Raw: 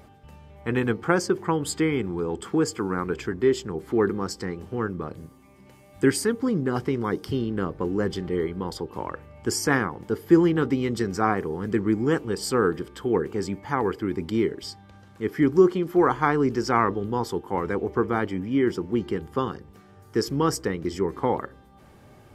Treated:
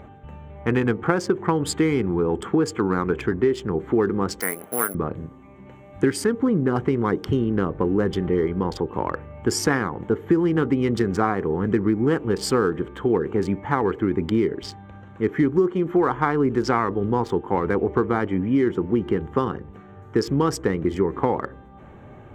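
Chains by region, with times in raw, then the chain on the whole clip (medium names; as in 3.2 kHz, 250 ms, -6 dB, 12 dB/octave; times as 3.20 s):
4.40–4.95 s: valve stage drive 18 dB, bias 0.65 + cabinet simulation 310–6300 Hz, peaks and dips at 360 Hz -6 dB, 640 Hz +8 dB, 1.4 kHz +6 dB, 2.1 kHz +8 dB, 5 kHz +4 dB + careless resampling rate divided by 4×, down none, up zero stuff
whole clip: local Wiener filter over 9 samples; treble shelf 6.2 kHz -6.5 dB; compression 5:1, threshold -24 dBFS; trim +7.5 dB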